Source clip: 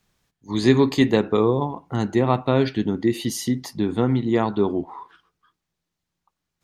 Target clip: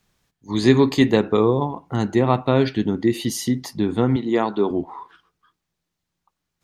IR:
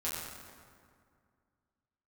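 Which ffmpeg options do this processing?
-filter_complex "[0:a]asettb=1/sr,asplit=3[link_01][link_02][link_03];[link_01]atrim=end=4.164[link_04];[link_02]atrim=start=4.16:end=4.71,asetpts=PTS-STARTPTS,afade=type=in:duration=0.004:curve=qsin,afade=type=out:start_time=0.546:duration=0.004:curve=qsin,highpass=230[link_05];[link_03]atrim=start=4.706[link_06];[link_04][link_05]acrossfade=duration=0.004:curve1=hsin:curve2=qsin[link_07];[link_07][link_06]acrossfade=duration=0.004:curve1=qsin:curve2=hsin,volume=1.5dB"

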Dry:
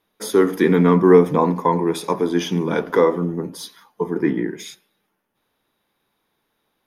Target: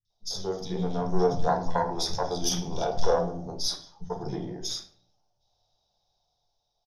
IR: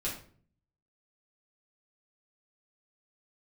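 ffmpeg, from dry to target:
-filter_complex "[0:a]firequalizer=gain_entry='entry(110,0);entry(150,-8);entry(280,-21);entry(720,5);entry(1100,-15);entry(1900,-24);entry(3600,1);entry(5600,13);entry(8900,-27);entry(14000,-23)':delay=0.05:min_phase=1,dynaudnorm=framelen=290:gausssize=9:maxgain=6dB,aeval=exprs='(tanh(2.51*val(0)+0.8)-tanh(0.8))/2.51':channel_layout=same,acrossover=split=200|2600[link_01][link_02][link_03];[link_03]adelay=50[link_04];[link_02]adelay=100[link_05];[link_01][link_05][link_04]amix=inputs=3:normalize=0,asplit=2[link_06][link_07];[1:a]atrim=start_sample=2205,lowshelf=frequency=160:gain=7.5[link_08];[link_07][link_08]afir=irnorm=-1:irlink=0,volume=-6dB[link_09];[link_06][link_09]amix=inputs=2:normalize=0,volume=-3.5dB"

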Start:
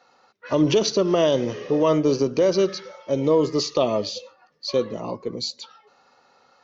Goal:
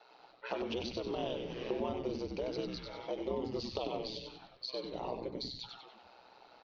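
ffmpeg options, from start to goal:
ffmpeg -i in.wav -filter_complex "[0:a]tiltshelf=frequency=1200:gain=-4.5,acompressor=threshold=-34dB:ratio=12,aeval=exprs='val(0)*sin(2*PI*62*n/s)':channel_layout=same,highpass=170,equalizer=frequency=240:width_type=q:width=4:gain=-9,equalizer=frequency=390:width_type=q:width=4:gain=5,equalizer=frequency=860:width_type=q:width=4:gain=7,equalizer=frequency=1200:width_type=q:width=4:gain=-7,equalizer=frequency=1900:width_type=q:width=4:gain=-7,lowpass=frequency=4200:width=0.5412,lowpass=frequency=4200:width=1.3066,asplit=7[link_01][link_02][link_03][link_04][link_05][link_06][link_07];[link_02]adelay=95,afreqshift=-140,volume=-5dB[link_08];[link_03]adelay=190,afreqshift=-280,volume=-11.7dB[link_09];[link_04]adelay=285,afreqshift=-420,volume=-18.5dB[link_10];[link_05]adelay=380,afreqshift=-560,volume=-25.2dB[link_11];[link_06]adelay=475,afreqshift=-700,volume=-32dB[link_12];[link_07]adelay=570,afreqshift=-840,volume=-38.7dB[link_13];[link_01][link_08][link_09][link_10][link_11][link_12][link_13]amix=inputs=7:normalize=0,volume=1dB" out.wav

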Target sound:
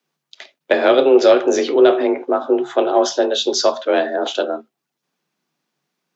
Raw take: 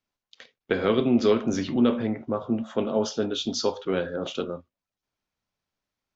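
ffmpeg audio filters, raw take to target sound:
ffmpeg -i in.wav -af "afreqshift=140,acontrast=64,volume=3.5dB" out.wav

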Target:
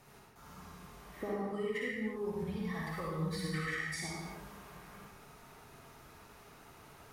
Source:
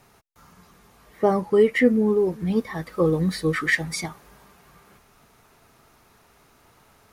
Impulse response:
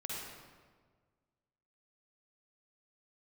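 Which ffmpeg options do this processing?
-filter_complex "[0:a]asettb=1/sr,asplit=3[link_01][link_02][link_03];[link_01]atrim=end=1.394[link_04];[link_02]atrim=start=1.39:end=4,asetpts=PTS-STARTPTS,afade=type=in:duration=0.004:curve=qsin,afade=type=out:start_time=2.606:duration=0.004:curve=qsin,equalizer=frequency=350:width_type=o:width=1.7:gain=-12.5[link_05];[link_03]atrim=start=3.996[link_06];[link_04][link_05]acrossfade=duration=0.004:curve1=hsin:curve2=qsin[link_07];[link_07][link_06]acrossfade=duration=0.004:curve1=qsin:curve2=hsin,acompressor=threshold=-36dB:ratio=6[link_08];[1:a]atrim=start_sample=2205,afade=type=out:start_time=0.4:duration=0.01,atrim=end_sample=18081[link_09];[link_08][link_09]afir=irnorm=-1:irlink=0"

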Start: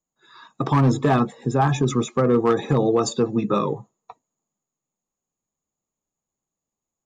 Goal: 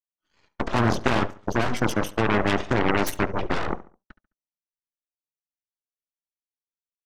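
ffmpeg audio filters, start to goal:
ffmpeg -i in.wav -filter_complex "[0:a]aecho=1:1:2.8:0.47,acrossover=split=240|630|3500[link_01][link_02][link_03][link_04];[link_03]asoftclip=type=tanh:threshold=-26dB[link_05];[link_01][link_02][link_05][link_04]amix=inputs=4:normalize=0,asetrate=38170,aresample=44100,atempo=1.15535,aeval=exprs='0.398*(cos(1*acos(clip(val(0)/0.398,-1,1)))-cos(1*PI/2))+0.126*(cos(3*acos(clip(val(0)/0.398,-1,1)))-cos(3*PI/2))+0.0631*(cos(4*acos(clip(val(0)/0.398,-1,1)))-cos(4*PI/2))+0.2*(cos(6*acos(clip(val(0)/0.398,-1,1)))-cos(6*PI/2))+0.178*(cos(8*acos(clip(val(0)/0.398,-1,1)))-cos(8*PI/2))':channel_layout=same,asplit=2[link_06][link_07];[link_07]adelay=70,lowpass=frequency=2800:poles=1,volume=-16.5dB,asplit=2[link_08][link_09];[link_09]adelay=70,lowpass=frequency=2800:poles=1,volume=0.38,asplit=2[link_10][link_11];[link_11]adelay=70,lowpass=frequency=2800:poles=1,volume=0.38[link_12];[link_06][link_08][link_10][link_12]amix=inputs=4:normalize=0" out.wav

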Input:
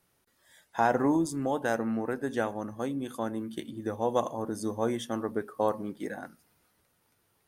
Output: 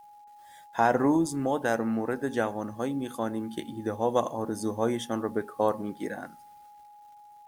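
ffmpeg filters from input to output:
ffmpeg -i in.wav -af "acrusher=bits=10:mix=0:aa=0.000001,aeval=exprs='val(0)+0.00282*sin(2*PI*830*n/s)':channel_layout=same,volume=2dB" out.wav

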